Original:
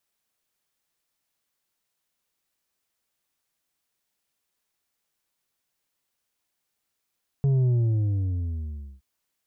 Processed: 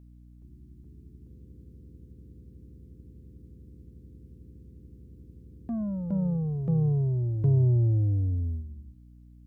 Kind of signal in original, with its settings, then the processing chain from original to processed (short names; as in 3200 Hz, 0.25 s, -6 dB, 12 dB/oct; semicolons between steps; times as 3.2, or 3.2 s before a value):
sub drop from 140 Hz, over 1.57 s, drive 5.5 dB, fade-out 1.35 s, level -19 dB
gate -32 dBFS, range -7 dB; hum 60 Hz, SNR 19 dB; echoes that change speed 0.422 s, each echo +3 st, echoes 3